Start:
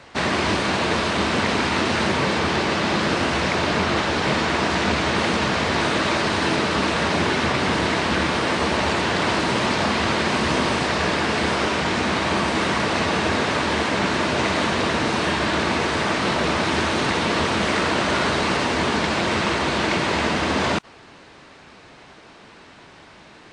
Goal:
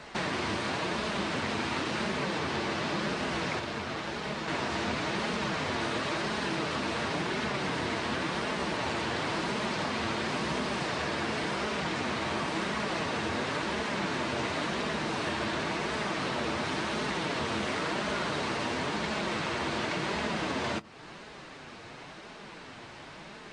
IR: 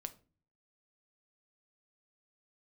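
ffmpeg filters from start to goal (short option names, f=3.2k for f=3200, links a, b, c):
-filter_complex "[0:a]acompressor=threshold=-34dB:ratio=2.5,asettb=1/sr,asplit=3[a][b][c];[a]atrim=end=3.594[d];[b]atrim=start=3.59:end=4.48,asetpts=PTS-STARTPTS,afade=t=in:d=0.004:c=qsin,afade=t=out:st=0.886:d=0.004:c=qsin,aeval=exprs='0.119*(cos(1*acos(clip(val(0)/0.119,-1,1)))-cos(1*PI/2))+0.0168*(cos(3*acos(clip(val(0)/0.119,-1,1)))-cos(3*PI/2))':c=same[e];[c]atrim=start=4.476[f];[d][e]acrossfade=d=0.004:c1=hsin:c2=qsin[g];[g][f]acrossfade=d=0.004:c1=qsin:c2=hsin,flanger=delay=4.7:depth=4.1:regen=-27:speed=0.94:shape=sinusoidal,asplit=2[h][i];[1:a]atrim=start_sample=2205[j];[i][j]afir=irnorm=-1:irlink=0,volume=-3dB[k];[h][k]amix=inputs=2:normalize=0"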